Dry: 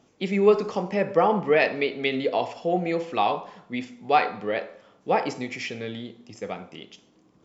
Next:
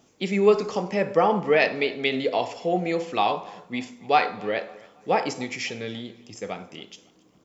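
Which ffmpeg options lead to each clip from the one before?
-filter_complex "[0:a]highshelf=f=6k:g=11.5,asplit=2[a][b];[b]adelay=276,lowpass=f=4.6k:p=1,volume=-23dB,asplit=2[c][d];[d]adelay=276,lowpass=f=4.6k:p=1,volume=0.41,asplit=2[e][f];[f]adelay=276,lowpass=f=4.6k:p=1,volume=0.41[g];[a][c][e][g]amix=inputs=4:normalize=0"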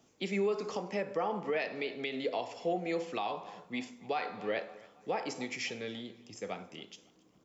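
-filter_complex "[0:a]acrossover=split=170|760[a][b][c];[a]acompressor=threshold=-49dB:ratio=6[d];[d][b][c]amix=inputs=3:normalize=0,alimiter=limit=-17dB:level=0:latency=1:release=219,volume=-6.5dB"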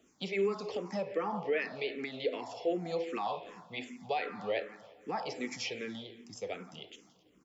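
-filter_complex "[0:a]asplit=2[a][b];[b]adelay=170,lowpass=f=4.6k:p=1,volume=-17dB,asplit=2[c][d];[d]adelay=170,lowpass=f=4.6k:p=1,volume=0.37,asplit=2[e][f];[f]adelay=170,lowpass=f=4.6k:p=1,volume=0.37[g];[a][c][e][g]amix=inputs=4:normalize=0,asplit=2[h][i];[i]afreqshift=-2.6[j];[h][j]amix=inputs=2:normalize=1,volume=2.5dB"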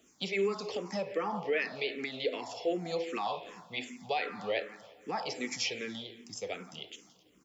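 -af "highshelf=f=2.6k:g=7.5"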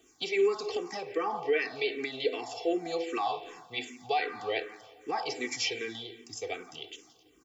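-af "aecho=1:1:2.6:0.82"

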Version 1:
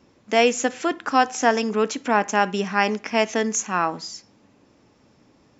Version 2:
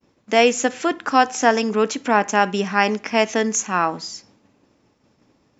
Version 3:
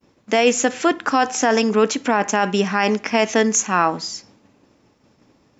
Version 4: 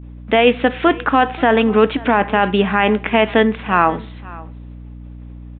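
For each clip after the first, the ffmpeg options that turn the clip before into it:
-af "agate=range=-33dB:threshold=-51dB:ratio=3:detection=peak,volume=2.5dB"
-af "alimiter=limit=-9dB:level=0:latency=1:release=20,volume=3.5dB"
-af "aeval=exprs='val(0)+0.0141*(sin(2*PI*60*n/s)+sin(2*PI*2*60*n/s)/2+sin(2*PI*3*60*n/s)/3+sin(2*PI*4*60*n/s)/4+sin(2*PI*5*60*n/s)/5)':c=same,aecho=1:1:533:0.0891,aresample=8000,aresample=44100,volume=3.5dB"

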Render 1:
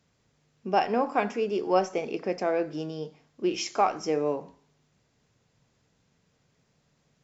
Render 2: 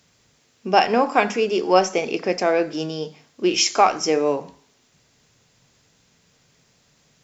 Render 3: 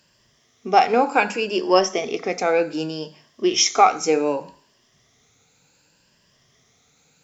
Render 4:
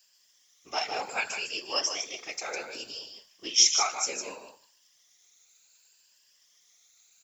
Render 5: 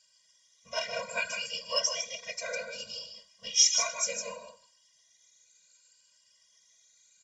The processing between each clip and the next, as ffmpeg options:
-af "highshelf=f=2k:g=9,bandreject=f=50:t=h:w=6,bandreject=f=100:t=h:w=6,bandreject=f=150:t=h:w=6,bandreject=f=200:t=h:w=6,volume=6.5dB"
-af "afftfilt=real='re*pow(10,10/40*sin(2*PI*(1.3*log(max(b,1)*sr/1024/100)/log(2)-(0.66)*(pts-256)/sr)))':imag='im*pow(10,10/40*sin(2*PI*(1.3*log(max(b,1)*sr/1024/100)/log(2)-(0.66)*(pts-256)/sr)))':win_size=1024:overlap=0.75,lowshelf=f=320:g=-3,volume=-1dB"
-af "aderivative,aecho=1:1:153:0.447,afftfilt=real='hypot(re,im)*cos(2*PI*random(0))':imag='hypot(re,im)*sin(2*PI*random(1))':win_size=512:overlap=0.75,volume=7.5dB"
-filter_complex "[0:a]asplit=2[a][b];[b]asoftclip=type=tanh:threshold=-20dB,volume=-4.5dB[c];[a][c]amix=inputs=2:normalize=0,aresample=22050,aresample=44100,afftfilt=real='re*eq(mod(floor(b*sr/1024/230),2),0)':imag='im*eq(mod(floor(b*sr/1024/230),2),0)':win_size=1024:overlap=0.75,volume=-1.5dB"

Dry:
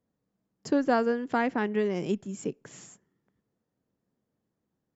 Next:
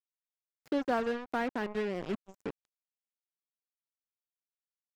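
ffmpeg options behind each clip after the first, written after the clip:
-filter_complex "[0:a]lowshelf=f=130:g=-7,acrusher=bits=4:mix=0:aa=0.5,acrossover=split=3900[a][b];[b]acompressor=threshold=-54dB:ratio=4:attack=1:release=60[c];[a][c]amix=inputs=2:normalize=0,volume=-5.5dB"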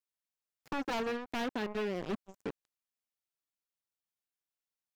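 -af "aeval=exprs='0.0335*(abs(mod(val(0)/0.0335+3,4)-2)-1)':c=same"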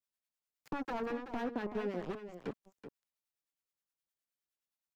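-filter_complex "[0:a]acrossover=split=440|1800[a][b][c];[c]acompressor=threshold=-54dB:ratio=6[d];[a][b][d]amix=inputs=3:normalize=0,acrossover=split=890[e][f];[e]aeval=exprs='val(0)*(1-0.7/2+0.7/2*cos(2*PI*9.6*n/s))':c=same[g];[f]aeval=exprs='val(0)*(1-0.7/2-0.7/2*cos(2*PI*9.6*n/s))':c=same[h];[g][h]amix=inputs=2:normalize=0,aecho=1:1:379:0.299,volume=1dB"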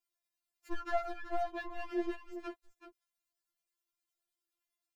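-af "afftfilt=real='re*4*eq(mod(b,16),0)':imag='im*4*eq(mod(b,16),0)':win_size=2048:overlap=0.75,volume=4.5dB"

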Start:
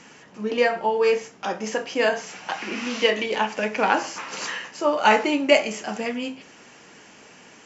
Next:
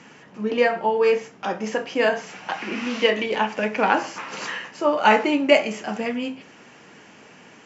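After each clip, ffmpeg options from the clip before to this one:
-af "highpass=80,bass=f=250:g=3,treble=f=4k:g=-7,volume=1dB"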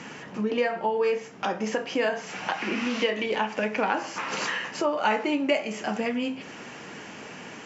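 -af "acompressor=threshold=-35dB:ratio=2.5,volume=6.5dB"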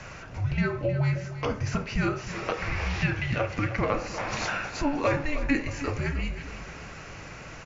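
-filter_complex "[0:a]afreqshift=-310,asplit=2[a][b];[b]aecho=0:1:312|624|936|1248|1560:0.237|0.116|0.0569|0.0279|0.0137[c];[a][c]amix=inputs=2:normalize=0,volume=-1dB"

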